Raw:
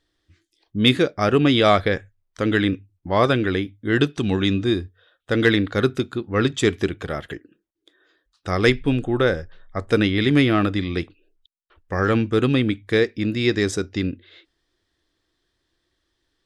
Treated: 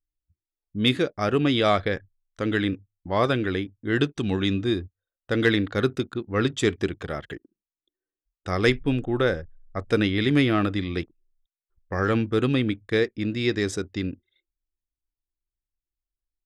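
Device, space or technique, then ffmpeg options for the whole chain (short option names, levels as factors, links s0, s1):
voice memo with heavy noise removal: -af "anlmdn=0.398,dynaudnorm=f=640:g=11:m=1.5,volume=0.562"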